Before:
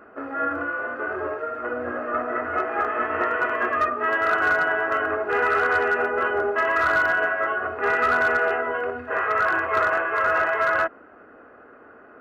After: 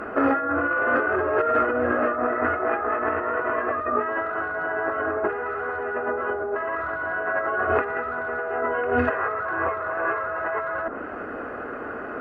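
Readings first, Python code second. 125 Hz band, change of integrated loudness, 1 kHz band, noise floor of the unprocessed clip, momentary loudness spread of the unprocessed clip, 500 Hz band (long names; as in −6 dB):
+5.0 dB, −2.5 dB, −2.0 dB, −49 dBFS, 8 LU, +0.5 dB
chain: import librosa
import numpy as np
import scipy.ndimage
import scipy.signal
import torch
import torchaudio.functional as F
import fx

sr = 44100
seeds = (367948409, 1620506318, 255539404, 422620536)

y = fx.env_lowpass_down(x, sr, base_hz=1400.0, full_db=-20.5)
y = fx.low_shelf(y, sr, hz=120.0, db=4.0)
y = fx.over_compress(y, sr, threshold_db=-33.0, ratio=-1.0)
y = F.gain(torch.from_numpy(y), 7.5).numpy()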